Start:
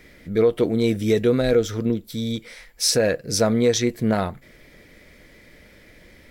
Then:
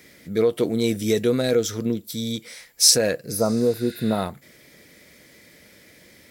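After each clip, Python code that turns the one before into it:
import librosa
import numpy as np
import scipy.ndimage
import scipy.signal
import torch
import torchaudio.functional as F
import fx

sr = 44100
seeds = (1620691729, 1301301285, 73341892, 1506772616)

y = fx.spec_repair(x, sr, seeds[0], start_s=3.34, length_s=0.85, low_hz=1400.0, high_hz=10000.0, source='both')
y = scipy.signal.sosfilt(scipy.signal.butter(2, 110.0, 'highpass', fs=sr, output='sos'), y)
y = fx.bass_treble(y, sr, bass_db=1, treble_db=10)
y = y * 10.0 ** (-2.0 / 20.0)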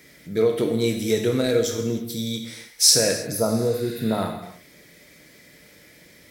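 y = fx.rev_gated(x, sr, seeds[1], gate_ms=340, shape='falling', drr_db=3.0)
y = y * 10.0 ** (-1.5 / 20.0)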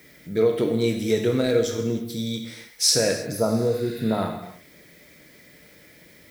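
y = fx.high_shelf(x, sr, hz=6100.0, db=-8.5)
y = fx.dmg_noise_colour(y, sr, seeds[2], colour='violet', level_db=-58.0)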